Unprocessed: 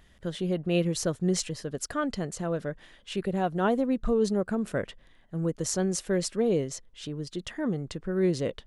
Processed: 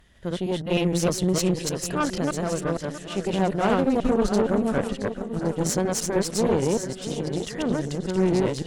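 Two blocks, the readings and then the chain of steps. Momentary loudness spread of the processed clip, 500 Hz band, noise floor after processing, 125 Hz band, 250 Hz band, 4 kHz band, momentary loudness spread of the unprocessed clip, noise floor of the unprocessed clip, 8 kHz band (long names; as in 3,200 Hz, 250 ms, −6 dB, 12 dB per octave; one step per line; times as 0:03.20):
7 LU, +4.5 dB, −39 dBFS, +4.5 dB, +5.0 dB, +5.0 dB, 10 LU, −59 dBFS, +4.5 dB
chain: delay that plays each chunk backwards 154 ms, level 0 dB
feedback echo with a long and a short gap by turns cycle 1,118 ms, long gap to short 1.5 to 1, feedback 35%, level −11 dB
tube saturation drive 20 dB, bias 0.75
level +5.5 dB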